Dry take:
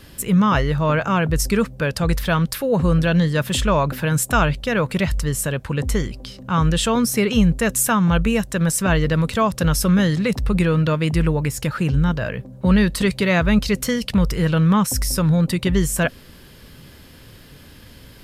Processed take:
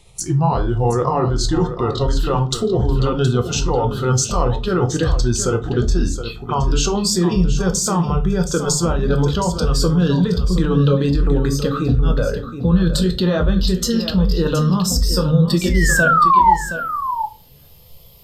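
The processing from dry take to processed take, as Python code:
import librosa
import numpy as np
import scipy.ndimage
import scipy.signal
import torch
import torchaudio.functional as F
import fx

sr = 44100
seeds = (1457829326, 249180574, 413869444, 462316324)

p1 = fx.pitch_glide(x, sr, semitones=-4.5, runs='ending unshifted')
p2 = fx.noise_reduce_blind(p1, sr, reduce_db=11)
p3 = fx.over_compress(p2, sr, threshold_db=-24.0, ratio=-0.5)
p4 = p2 + F.gain(torch.from_numpy(p3), 3.0).numpy()
p5 = fx.spec_paint(p4, sr, seeds[0], shape='fall', start_s=15.61, length_s=0.93, low_hz=840.0, high_hz=2400.0, level_db=-8.0)
p6 = fx.env_phaser(p5, sr, low_hz=230.0, high_hz=2200.0, full_db=-18.5)
p7 = p6 + fx.echo_single(p6, sr, ms=720, db=-10.5, dry=0)
p8 = fx.room_shoebox(p7, sr, seeds[1], volume_m3=190.0, walls='furnished', distance_m=0.8)
y = F.gain(torch.from_numpy(p8), -1.5).numpy()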